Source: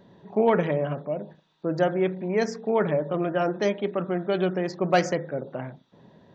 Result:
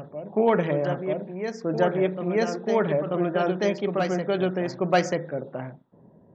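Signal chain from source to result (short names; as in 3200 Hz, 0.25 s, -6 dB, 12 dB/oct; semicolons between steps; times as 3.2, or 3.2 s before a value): low-pass opened by the level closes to 640 Hz, open at -22 dBFS; reverse echo 0.937 s -6.5 dB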